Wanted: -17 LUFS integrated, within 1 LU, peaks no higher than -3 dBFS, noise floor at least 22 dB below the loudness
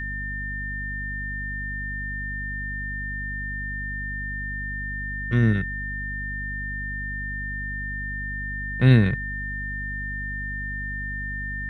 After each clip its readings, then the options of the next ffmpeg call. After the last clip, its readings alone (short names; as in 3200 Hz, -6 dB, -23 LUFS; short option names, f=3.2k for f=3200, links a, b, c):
hum 50 Hz; harmonics up to 250 Hz; hum level -31 dBFS; steady tone 1800 Hz; tone level -30 dBFS; loudness -27.5 LUFS; peak -4.5 dBFS; loudness target -17.0 LUFS
-> -af "bandreject=f=50:t=h:w=6,bandreject=f=100:t=h:w=6,bandreject=f=150:t=h:w=6,bandreject=f=200:t=h:w=6,bandreject=f=250:t=h:w=6"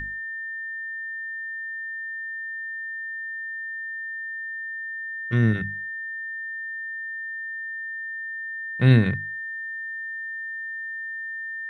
hum none; steady tone 1800 Hz; tone level -30 dBFS
-> -af "bandreject=f=1.8k:w=30"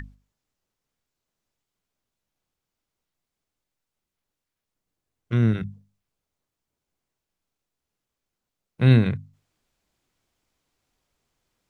steady tone none; loudness -21.5 LUFS; peak -4.5 dBFS; loudness target -17.0 LUFS
-> -af "volume=4.5dB,alimiter=limit=-3dB:level=0:latency=1"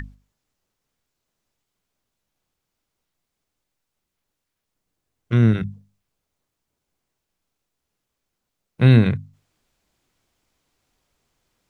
loudness -17.5 LUFS; peak -3.0 dBFS; noise floor -81 dBFS